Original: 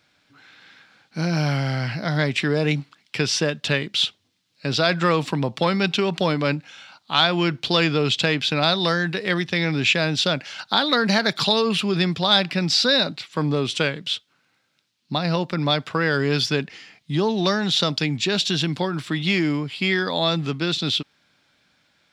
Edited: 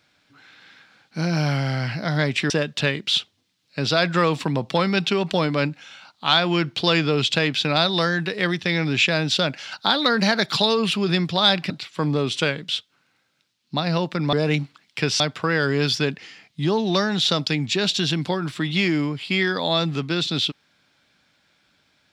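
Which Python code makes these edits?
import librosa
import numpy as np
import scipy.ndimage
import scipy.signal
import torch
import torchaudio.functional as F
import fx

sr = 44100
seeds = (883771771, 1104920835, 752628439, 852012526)

y = fx.edit(x, sr, fx.move(start_s=2.5, length_s=0.87, to_s=15.71),
    fx.cut(start_s=12.57, length_s=0.51), tone=tone)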